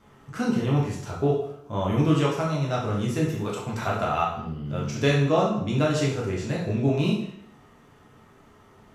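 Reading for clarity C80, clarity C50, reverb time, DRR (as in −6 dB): 6.5 dB, 3.5 dB, 0.70 s, −4.0 dB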